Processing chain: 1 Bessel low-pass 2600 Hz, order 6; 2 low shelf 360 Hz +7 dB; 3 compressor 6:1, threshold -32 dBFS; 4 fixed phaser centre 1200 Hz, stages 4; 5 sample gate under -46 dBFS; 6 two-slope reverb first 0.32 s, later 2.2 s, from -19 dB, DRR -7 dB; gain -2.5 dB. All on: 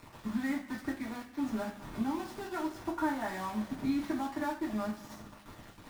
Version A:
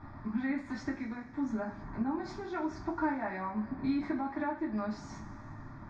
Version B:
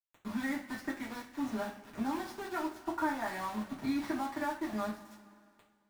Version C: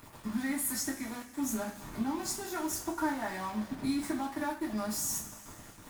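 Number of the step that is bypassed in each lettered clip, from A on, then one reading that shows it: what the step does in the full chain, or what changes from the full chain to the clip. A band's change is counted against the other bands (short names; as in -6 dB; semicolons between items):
5, distortion -12 dB; 2, 125 Hz band -4.5 dB; 1, 8 kHz band +18.0 dB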